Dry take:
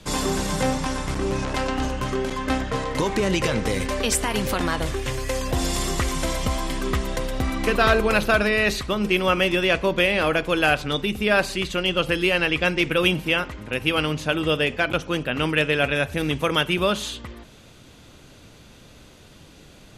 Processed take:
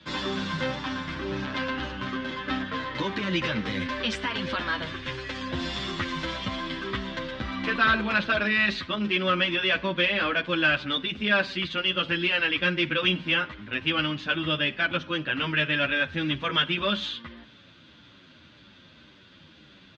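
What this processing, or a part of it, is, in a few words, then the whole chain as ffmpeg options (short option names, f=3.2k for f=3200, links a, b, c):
barber-pole flanger into a guitar amplifier: -filter_complex "[0:a]asplit=2[a][b];[b]adelay=9.1,afreqshift=-1.8[c];[a][c]amix=inputs=2:normalize=1,asoftclip=type=tanh:threshold=-12.5dB,highpass=110,equalizer=f=130:t=q:w=4:g=-4,equalizer=f=440:t=q:w=4:g=-10,equalizer=f=740:t=q:w=4:g=-9,equalizer=f=1.6k:t=q:w=4:g=5,equalizer=f=3.4k:t=q:w=4:g=5,lowpass=f=4.4k:w=0.5412,lowpass=f=4.4k:w=1.3066"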